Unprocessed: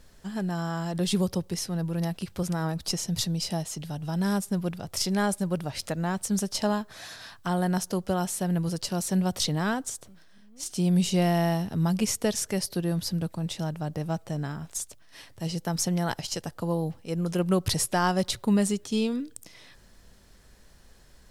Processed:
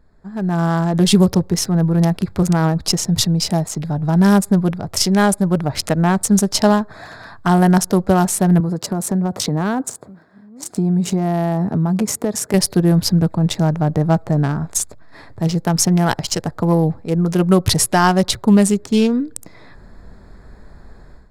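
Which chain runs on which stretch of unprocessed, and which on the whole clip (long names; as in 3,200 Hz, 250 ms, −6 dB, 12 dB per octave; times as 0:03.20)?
0:08.60–0:12.54: high-pass filter 140 Hz + parametric band 3,900 Hz −6 dB 2.3 octaves + downward compressor, threshold −29 dBFS
whole clip: adaptive Wiener filter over 15 samples; automatic gain control gain up to 15.5 dB; notch filter 530 Hz, Q 12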